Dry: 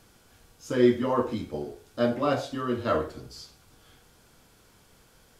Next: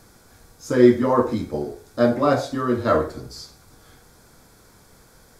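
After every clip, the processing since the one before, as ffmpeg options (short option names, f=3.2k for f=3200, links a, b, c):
-af "equalizer=f=2.9k:w=3.6:g=-12.5,volume=7dB"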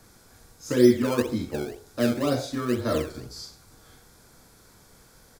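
-filter_complex "[0:a]acrossover=split=300|540|2100[a][b][c][d];[b]acrusher=samples=16:mix=1:aa=0.000001:lfo=1:lforange=16:lforate=2[e];[c]acompressor=threshold=-33dB:ratio=6[f];[d]asplit=2[g][h];[h]adelay=42,volume=-2.5dB[i];[g][i]amix=inputs=2:normalize=0[j];[a][e][f][j]amix=inputs=4:normalize=0,volume=-3dB"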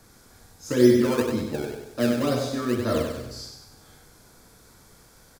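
-af "aecho=1:1:96|192|288|384|480|576:0.501|0.236|0.111|0.052|0.0245|0.0115"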